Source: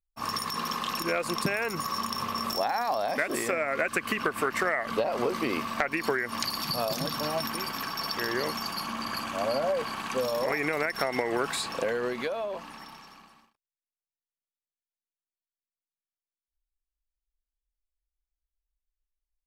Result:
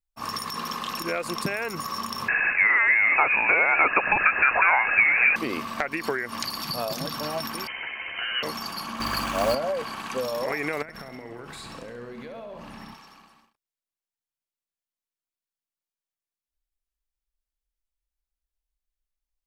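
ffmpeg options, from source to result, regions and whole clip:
ffmpeg -i in.wav -filter_complex "[0:a]asettb=1/sr,asplit=3[link_01][link_02][link_03];[link_01]atrim=end=2.284[link_04];[link_02]atrim=start=2.28:end=5.36,asetpts=PTS-STARTPTS,afade=type=in:duration=0.004:curve=qsin,afade=type=out:start_time=3.076:duration=0.004:curve=qsin,aeval=exprs='val(0)+0.5*0.0237*sgn(val(0))':channel_layout=same,acontrast=69,lowpass=frequency=2400:width_type=q:width=0.5098,lowpass=frequency=2400:width_type=q:width=0.6013,lowpass=frequency=2400:width_type=q:width=0.9,lowpass=frequency=2400:width_type=q:width=2.563,afreqshift=-2800[link_05];[link_03]atrim=start=5.356[link_06];[link_04][link_05]acrossfade=duration=0.004:curve1=hsin:curve2=qsin[link_07];[link_07][link_06]acrossfade=duration=0.004:curve1=qsin:curve2=hsin,asettb=1/sr,asplit=3[link_08][link_09][link_10];[link_08]atrim=end=7.674[link_11];[link_09]atrim=start=7.67:end=8.43,asetpts=PTS-STARTPTS,afade=type=in:duration=0.004:curve=qsin,afade=type=out:start_time=0.756:duration=0.004:curve=qsin,highpass=frequency=180:width=0.5412,highpass=frequency=180:width=1.3066,lowpass=frequency=2800:width_type=q:width=0.5098,lowpass=frequency=2800:width_type=q:width=0.6013,lowpass=frequency=2800:width_type=q:width=0.9,lowpass=frequency=2800:width_type=q:width=2.563,afreqshift=-3300,asplit=2[link_12][link_13];[link_13]adelay=13,volume=-5dB[link_14];[link_12][link_14]amix=inputs=2:normalize=0,atrim=end_sample=33516[link_15];[link_10]atrim=start=8.426[link_16];[link_11][link_15]acrossfade=duration=0.004:curve1=hsin:curve2=qsin[link_17];[link_17][link_16]acrossfade=duration=0.004:curve1=qsin:curve2=hsin,asettb=1/sr,asplit=3[link_18][link_19][link_20];[link_18]atrim=end=9.004[link_21];[link_19]atrim=start=9:end=9.55,asetpts=PTS-STARTPTS,afade=type=in:duration=0.004:curve=qsin,afade=type=out:start_time=0.546:duration=0.004:curve=qsin,acrusher=bits=4:mode=log:mix=0:aa=0.000001,acontrast=39,aeval=exprs='val(0)+0.0112*(sin(2*PI*50*n/s)+sin(2*PI*2*50*n/s)/2+sin(2*PI*3*50*n/s)/3+sin(2*PI*4*50*n/s)/4+sin(2*PI*5*50*n/s)/5)':channel_layout=same[link_22];[link_20]atrim=start=9.546[link_23];[link_21][link_22]acrossfade=duration=0.004:curve1=hsin:curve2=qsin[link_24];[link_24][link_23]acrossfade=duration=0.004:curve1=qsin:curve2=hsin,asettb=1/sr,asplit=3[link_25][link_26][link_27];[link_25]atrim=end=10.824[link_28];[link_26]atrim=start=10.82:end=12.94,asetpts=PTS-STARTPTS,afade=type=in:duration=0.004:curve=qsin,afade=type=out:start_time=2.116:duration=0.004:curve=qsin,bass=frequency=250:gain=12,treble=frequency=4000:gain=-3,acompressor=threshold=-37dB:ratio=8:attack=3.2:release=140:knee=1:detection=peak,aecho=1:1:67|134|201|268|335|402|469:0.398|0.219|0.12|0.0662|0.0364|0.02|0.011,atrim=end_sample=93492[link_29];[link_27]atrim=start=12.936[link_30];[link_28][link_29]acrossfade=duration=0.004:curve1=hsin:curve2=qsin[link_31];[link_31][link_30]acrossfade=duration=0.004:curve1=qsin:curve2=hsin" out.wav

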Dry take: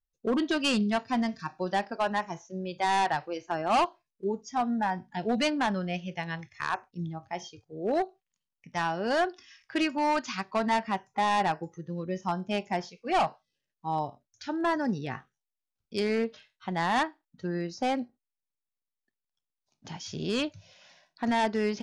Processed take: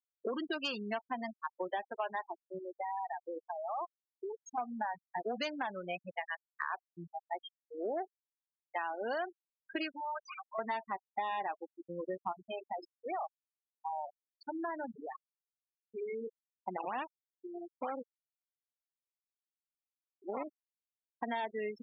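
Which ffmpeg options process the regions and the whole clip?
ffmpeg -i in.wav -filter_complex "[0:a]asettb=1/sr,asplit=3[link_01][link_02][link_03];[link_01]atrim=end=2.584[link_04];[link_02]atrim=start=2.58:end=4.58,asetpts=PTS-STARTPTS,afade=type=in:duration=0.004:curve=qsin,afade=type=out:start_time=1.996:duration=0.004:curve=qsin,acompressor=threshold=-34dB:ratio=20:attack=3.2:release=140:knee=1:detection=peak,asoftclip=type=hard:threshold=-27.5dB[link_05];[link_03]atrim=start=4.576[link_06];[link_04][link_05]acrossfade=duration=0.004:curve1=hsin:curve2=qsin[link_07];[link_07][link_06]acrossfade=duration=0.004:curve1=qsin:curve2=hsin,asettb=1/sr,asplit=3[link_08][link_09][link_10];[link_08]atrim=end=9.894[link_11];[link_09]atrim=start=9.89:end=10.59,asetpts=PTS-STARTPTS,afade=type=in:duration=0.004:curve=qsin,afade=type=out:start_time=0.696:duration=0.004:curve=qsin,lowshelf=frequency=140:gain=-10.5,acompressor=threshold=-30dB:ratio=20:attack=3.2:release=140:knee=1:detection=peak,volume=35dB,asoftclip=hard,volume=-35dB[link_12];[link_10]atrim=start=10.586[link_13];[link_11][link_12]acrossfade=duration=0.004:curve1=hsin:curve2=qsin[link_14];[link_14][link_13]acrossfade=duration=0.004:curve1=qsin:curve2=hsin,asettb=1/sr,asplit=3[link_15][link_16][link_17];[link_15]atrim=end=12.324[link_18];[link_16]atrim=start=12.32:end=16.27,asetpts=PTS-STARTPTS,afade=type=in:duration=0.004:curve=qsin,afade=type=out:start_time=3.946:duration=0.004:curve=qsin,bandreject=frequency=50:width_type=h:width=6,bandreject=frequency=100:width_type=h:width=6,bandreject=frequency=150:width_type=h:width=6,bandreject=frequency=200:width_type=h:width=6,bandreject=frequency=250:width_type=h:width=6,bandreject=frequency=300:width_type=h:width=6,bandreject=frequency=350:width_type=h:width=6,bandreject=frequency=400:width_type=h:width=6,bandreject=frequency=450:width_type=h:width=6,acompressor=threshold=-33dB:ratio=5:attack=3.2:release=140:knee=1:detection=peak[link_19];[link_17]atrim=start=16.266[link_20];[link_18][link_19]acrossfade=duration=0.004:curve1=hsin:curve2=qsin[link_21];[link_21][link_20]acrossfade=duration=0.004:curve1=qsin:curve2=hsin,asettb=1/sr,asplit=3[link_22][link_23][link_24];[link_22]atrim=end=16.774[link_25];[link_23]atrim=start=16.77:end=20.47,asetpts=PTS-STARTPTS,afade=type=in:duration=0.004:curve=qsin,afade=type=out:start_time=3.696:duration=0.004:curve=qsin,acrusher=samples=16:mix=1:aa=0.000001:lfo=1:lforange=25.6:lforate=3.1,aeval=exprs='max(val(0),0)':channel_layout=same[link_26];[link_24]atrim=start=20.466[link_27];[link_25][link_26]acrossfade=duration=0.004:curve1=hsin:curve2=qsin[link_28];[link_28][link_27]acrossfade=duration=0.004:curve1=qsin:curve2=hsin,highpass=400,afftfilt=real='re*gte(hypot(re,im),0.0398)':imag='im*gte(hypot(re,im),0.0398)':win_size=1024:overlap=0.75,acompressor=threshold=-37dB:ratio=5,volume=2.5dB" out.wav

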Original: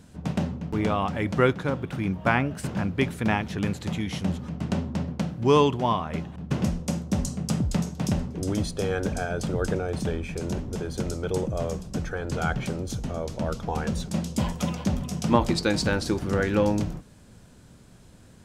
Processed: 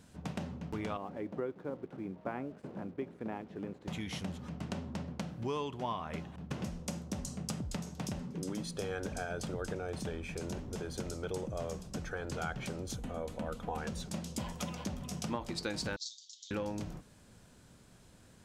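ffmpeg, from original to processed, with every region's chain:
ffmpeg -i in.wav -filter_complex "[0:a]asettb=1/sr,asplit=3[link_01][link_02][link_03];[link_01]atrim=end=0.974[link_04];[link_02]atrim=start=0.97:end=3.88,asetpts=PTS-STARTPTS,afade=type=in:duration=0.004:curve=qsin,afade=type=out:start_time=2.906:duration=0.004:curve=qsin,bandpass=frequency=380:width_type=q:width=1.2,aeval=exprs='sgn(val(0))*max(abs(val(0))-0.00141,0)':channel_layout=same[link_05];[link_03]atrim=start=3.876[link_06];[link_04][link_05]acrossfade=duration=0.004:curve1=hsin:curve2=qsin[link_07];[link_07][link_06]acrossfade=duration=0.004:curve1=qsin:curve2=hsin,asettb=1/sr,asplit=3[link_08][link_09][link_10];[link_08]atrim=end=8.194[link_11];[link_09]atrim=start=8.19:end=8.77,asetpts=PTS-STARTPTS,afade=type=in:duration=0.004:curve=qsin,afade=type=out:start_time=0.576:duration=0.004:curve=qsin,lowshelf=frequency=120:width_type=q:width=3:gain=-7.5,bandreject=frequency=680:width=5.2,asoftclip=type=hard:threshold=-18dB[link_12];[link_10]atrim=start=8.766[link_13];[link_11][link_12]acrossfade=duration=0.004:curve1=hsin:curve2=qsin[link_14];[link_14][link_13]acrossfade=duration=0.004:curve1=qsin:curve2=hsin,asettb=1/sr,asplit=3[link_15][link_16][link_17];[link_15]atrim=end=12.964[link_18];[link_16]atrim=start=12.96:end=13.78,asetpts=PTS-STARTPTS,afade=type=in:duration=0.004:curve=qsin,afade=type=out:start_time=0.816:duration=0.004:curve=qsin,equalizer=frequency=5400:width_type=o:width=0.73:gain=-11.5,aecho=1:1:4:0.35,atrim=end_sample=36162[link_19];[link_17]atrim=start=13.776[link_20];[link_18][link_19]acrossfade=duration=0.004:curve1=hsin:curve2=qsin[link_21];[link_21][link_20]acrossfade=duration=0.004:curve1=qsin:curve2=hsin,asettb=1/sr,asplit=3[link_22][link_23][link_24];[link_22]atrim=end=15.964[link_25];[link_23]atrim=start=15.96:end=16.51,asetpts=PTS-STARTPTS,afade=type=in:duration=0.004:curve=qsin,afade=type=out:start_time=0.546:duration=0.004:curve=qsin,asuperpass=centerf=5100:order=12:qfactor=1.3,aecho=1:1:7:0.68,atrim=end_sample=24255[link_26];[link_24]atrim=start=16.506[link_27];[link_25][link_26]acrossfade=duration=0.004:curve1=hsin:curve2=qsin[link_28];[link_28][link_27]acrossfade=duration=0.004:curve1=qsin:curve2=hsin,acompressor=threshold=-27dB:ratio=5,lowshelf=frequency=400:gain=-5,volume=-4.5dB" out.wav

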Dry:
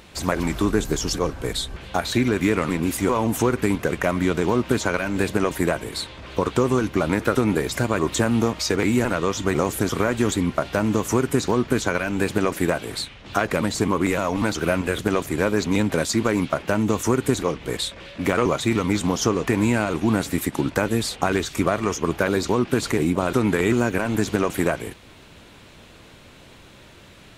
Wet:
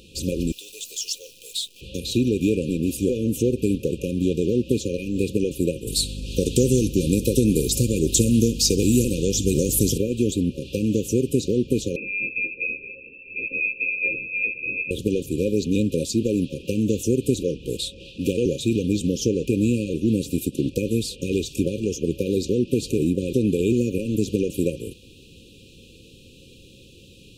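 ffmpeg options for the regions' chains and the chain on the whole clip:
ffmpeg -i in.wav -filter_complex "[0:a]asettb=1/sr,asplit=3[link_01][link_02][link_03];[link_01]atrim=end=0.524[link_04];[link_02]atrim=start=0.52:end=1.81,asetpts=PTS-STARTPTS,afade=type=in:duration=0.004:curve=qsin,afade=type=out:start_time=1.286:duration=0.004:curve=qsin,highpass=frequency=840:width=0.5412,highpass=frequency=840:width=1.3066,acrusher=bits=8:dc=4:mix=0:aa=0.000001[link_05];[link_03]atrim=start=1.806[link_06];[link_04][link_05]acrossfade=duration=0.004:curve1=hsin:curve2=qsin[link_07];[link_07][link_06]acrossfade=duration=0.004:curve1=qsin:curve2=hsin,asettb=1/sr,asplit=3[link_08][link_09][link_10];[link_08]atrim=end=5.874[link_11];[link_09]atrim=start=5.87:end=9.98,asetpts=PTS-STARTPTS,afade=type=in:duration=0.004:curve=qsin,afade=type=out:start_time=4.106:duration=0.004:curve=qsin,bass=frequency=250:gain=4,treble=frequency=4000:gain=14,aeval=exprs='val(0)+0.0282*(sin(2*PI*50*n/s)+sin(2*PI*2*50*n/s)/2+sin(2*PI*3*50*n/s)/3+sin(2*PI*4*50*n/s)/4+sin(2*PI*5*50*n/s)/5)':channel_layout=same,aecho=1:1:64|128|192|256|320:0.1|0.058|0.0336|0.0195|0.0113,atrim=end_sample=181251[link_12];[link_10]atrim=start=9.976[link_13];[link_11][link_12]acrossfade=duration=0.004:curve1=hsin:curve2=qsin[link_14];[link_14][link_13]acrossfade=duration=0.004:curve1=qsin:curve2=hsin,asettb=1/sr,asplit=3[link_15][link_16][link_17];[link_15]atrim=end=11.964[link_18];[link_16]atrim=start=11.96:end=14.91,asetpts=PTS-STARTPTS,afade=type=in:duration=0.004:curve=qsin,afade=type=out:start_time=2.946:duration=0.004:curve=qsin,lowpass=frequency=2300:width_type=q:width=0.5098,lowpass=frequency=2300:width_type=q:width=0.6013,lowpass=frequency=2300:width_type=q:width=0.9,lowpass=frequency=2300:width_type=q:width=2.563,afreqshift=-2700,asplit=2[link_19][link_20];[link_20]adelay=15,volume=-3dB[link_21];[link_19][link_21]amix=inputs=2:normalize=0,atrim=end_sample=130095[link_22];[link_17]atrim=start=14.906[link_23];[link_18][link_22]acrossfade=duration=0.004:curve1=hsin:curve2=qsin[link_24];[link_24][link_23]acrossfade=duration=0.004:curve1=qsin:curve2=hsin,afftfilt=real='re*(1-between(b*sr/4096,550,2400))':imag='im*(1-between(b*sr/4096,550,2400))':win_size=4096:overlap=0.75,adynamicequalizer=threshold=0.0112:dfrequency=1600:dqfactor=0.7:tfrequency=1600:tqfactor=0.7:attack=5:release=100:ratio=0.375:range=2:mode=cutabove:tftype=highshelf" out.wav

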